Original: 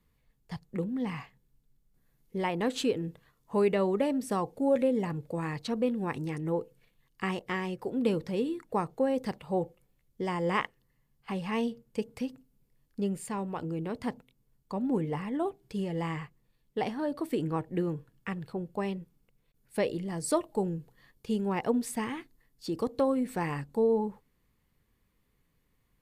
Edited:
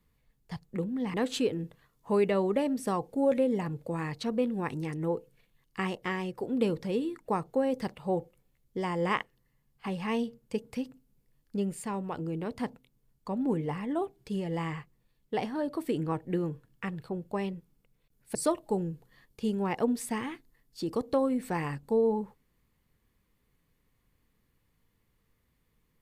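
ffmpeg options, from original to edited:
-filter_complex "[0:a]asplit=3[s0][s1][s2];[s0]atrim=end=1.142[s3];[s1]atrim=start=2.578:end=19.792[s4];[s2]atrim=start=20.208[s5];[s3][s4]acrossfade=d=0.004:c1=hsin:c2=hsin[s6];[s6][s5]acrossfade=d=0.004:c1=hsin:c2=hsin"

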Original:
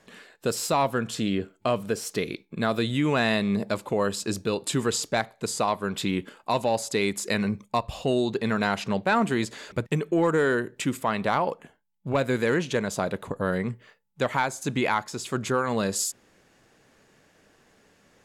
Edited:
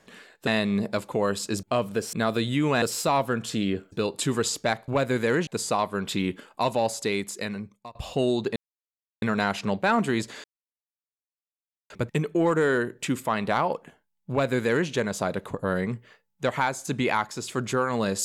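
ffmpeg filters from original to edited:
-filter_complex "[0:a]asplit=11[s0][s1][s2][s3][s4][s5][s6][s7][s8][s9][s10];[s0]atrim=end=0.472[s11];[s1]atrim=start=3.238:end=4.402[s12];[s2]atrim=start=1.568:end=2.072[s13];[s3]atrim=start=2.548:end=3.242[s14];[s4]atrim=start=0.468:end=1.572[s15];[s5]atrim=start=4.398:end=5.362[s16];[s6]atrim=start=12.068:end=12.662[s17];[s7]atrim=start=5.358:end=7.84,asetpts=PTS-STARTPTS,afade=t=out:st=1.422:d=1.06:silence=0.0749894[s18];[s8]atrim=start=7.84:end=8.45,asetpts=PTS-STARTPTS,afade=t=in:d=0.004:c=hsin:silence=0.0749894,afade=t=out:st=0.606:d=0.004:c=hsin,apad=pad_dur=0.66[s19];[s9]atrim=start=8.45:end=9.67,asetpts=PTS-STARTPTS,afade=t=in:d=0.004:c=hsin,afade=t=out:st=1.216:d=0.004:c=hsin,apad=pad_dur=1.46[s20];[s10]atrim=start=9.67,asetpts=PTS-STARTPTS,afade=t=in:d=0.004:c=hsin[s21];[s11][s12]acrossfade=d=0.004:c1=hsin:c2=hsin[s22];[s22][s13]acrossfade=d=0.004:c1=hsin:c2=hsin[s23];[s23][s14]acrossfade=d=0.004:c1=hsin:c2=hsin[s24];[s24][s15]acrossfade=d=0.004:c1=hsin:c2=hsin[s25];[s25][s16]acrossfade=d=0.004:c1=hsin:c2=hsin[s26];[s26][s17]acrossfade=d=0.004:c1=hsin:c2=hsin[s27];[s18][s19][s20][s21]concat=n=4:v=0:a=1[s28];[s27][s28]acrossfade=d=0.004:c1=hsin:c2=hsin"

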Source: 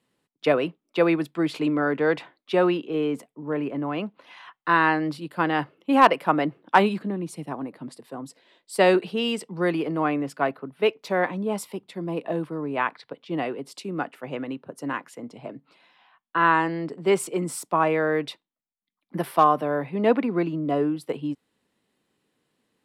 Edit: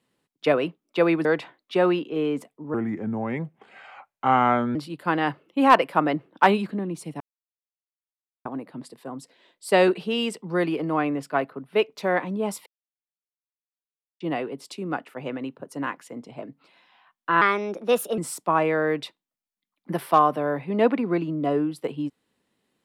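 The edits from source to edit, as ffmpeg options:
-filter_complex "[0:a]asplit=9[s0][s1][s2][s3][s4][s5][s6][s7][s8];[s0]atrim=end=1.252[s9];[s1]atrim=start=2.028:end=3.524[s10];[s2]atrim=start=3.52:end=5.07,asetpts=PTS-STARTPTS,asetrate=33957,aresample=44100[s11];[s3]atrim=start=5.066:end=7.52,asetpts=PTS-STARTPTS,afade=t=out:st=2.45:d=0.004:c=hsin,apad=pad_dur=1.25[s12];[s4]atrim=start=7.52:end=11.73,asetpts=PTS-STARTPTS,afade=t=in:d=0.004:c=hsin,afade=t=out:st=4.206:d=0.004:c=hsin[s13];[s5]atrim=start=11.73:end=13.27,asetpts=PTS-STARTPTS,volume=0[s14];[s6]atrim=start=13.27:end=16.484,asetpts=PTS-STARTPTS,afade=t=in:d=0.004:c=hsin[s15];[s7]atrim=start=16.48:end=17.43,asetpts=PTS-STARTPTS,asetrate=54684,aresample=44100,atrim=end_sample=33786,asetpts=PTS-STARTPTS[s16];[s8]atrim=start=17.426[s17];[s9][s10]acrossfade=d=0.004:c1=hsin:c2=hsin[s18];[s18][s11]acrossfade=d=0.004:c1=hsin:c2=hsin[s19];[s12][s13][s14][s15]concat=n=4:v=0:a=1[s20];[s19][s20]acrossfade=d=0.004:c1=hsin:c2=hsin[s21];[s21][s16]acrossfade=d=0.004:c1=hsin:c2=hsin[s22];[s22][s17]acrossfade=d=0.004:c1=hsin:c2=hsin"

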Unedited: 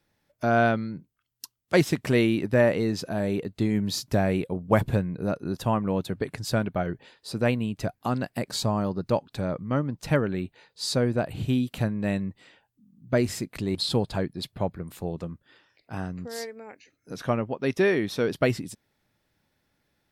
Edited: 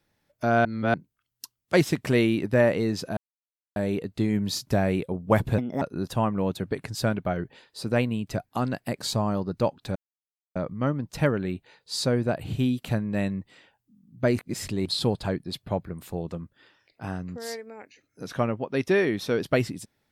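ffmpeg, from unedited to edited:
-filter_complex "[0:a]asplit=9[s0][s1][s2][s3][s4][s5][s6][s7][s8];[s0]atrim=end=0.652[s9];[s1]atrim=start=0.648:end=0.942,asetpts=PTS-STARTPTS,areverse[s10];[s2]atrim=start=0.938:end=3.17,asetpts=PTS-STARTPTS,afade=t=out:st=2.228:d=0.004:c=hsin,apad=pad_dur=0.59[s11];[s3]atrim=start=3.17:end=4.994,asetpts=PTS-STARTPTS,afade=t=in:d=0.004:c=hsin[s12];[s4]atrim=start=4.99:end=5.31,asetpts=PTS-STARTPTS,asetrate=59976,aresample=44100,atrim=end_sample=10376,asetpts=PTS-STARTPTS[s13];[s5]atrim=start=5.306:end=9.45,asetpts=PTS-STARTPTS,afade=t=out:st=4.14:d=0.004:c=hsin,apad=pad_dur=0.6[s14];[s6]atrim=start=9.45:end=13.282,asetpts=PTS-STARTPTS,afade=t=in:d=0.004:c=hsin[s15];[s7]atrim=start=13.278:end=13.562,asetpts=PTS-STARTPTS,areverse[s16];[s8]atrim=start=13.558[s17];[s9][s10]acrossfade=d=0.004:c1=hsin:c2=hsin[s18];[s11][s12]concat=n=2:v=0:a=1[s19];[s18][s19]acrossfade=d=0.004:c1=hsin:c2=hsin[s20];[s20][s13]acrossfade=d=0.004:c1=hsin:c2=hsin[s21];[s14][s15]concat=n=2:v=0:a=1[s22];[s21][s22]acrossfade=d=0.004:c1=hsin:c2=hsin[s23];[s23][s16]acrossfade=d=0.004:c1=hsin:c2=hsin[s24];[s24][s17]acrossfade=d=0.004:c1=hsin:c2=hsin"

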